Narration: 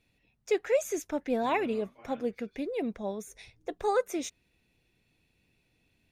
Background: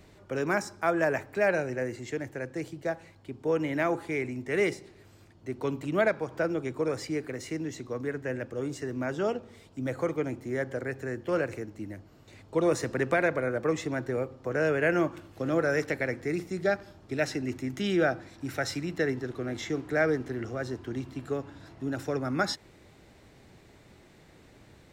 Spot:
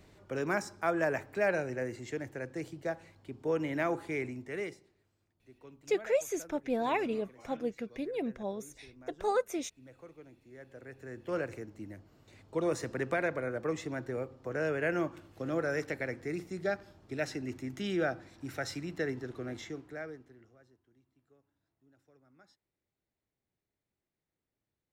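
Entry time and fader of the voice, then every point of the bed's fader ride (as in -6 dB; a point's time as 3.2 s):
5.40 s, -2.5 dB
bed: 4.26 s -4 dB
5.15 s -22.5 dB
10.46 s -22.5 dB
11.34 s -6 dB
19.52 s -6 dB
20.89 s -35 dB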